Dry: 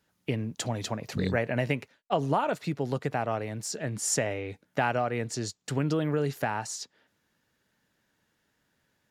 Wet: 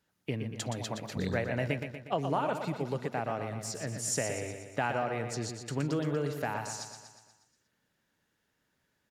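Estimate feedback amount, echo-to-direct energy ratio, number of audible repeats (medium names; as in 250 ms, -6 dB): 56%, -6.0 dB, 6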